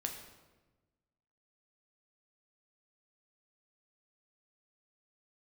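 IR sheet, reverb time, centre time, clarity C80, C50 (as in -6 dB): 1.2 s, 30 ms, 8.0 dB, 6.5 dB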